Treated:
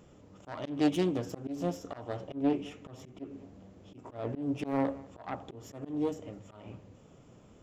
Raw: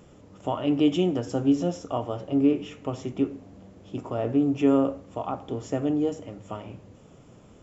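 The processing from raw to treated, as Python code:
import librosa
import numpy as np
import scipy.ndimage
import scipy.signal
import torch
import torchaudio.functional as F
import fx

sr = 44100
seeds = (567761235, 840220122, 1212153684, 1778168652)

y = fx.self_delay(x, sr, depth_ms=0.38)
y = y + 10.0 ** (-22.5 / 20.0) * np.pad(y, (int(211 * sr / 1000.0), 0))[:len(y)]
y = fx.auto_swell(y, sr, attack_ms=179.0)
y = y * librosa.db_to_amplitude(-5.0)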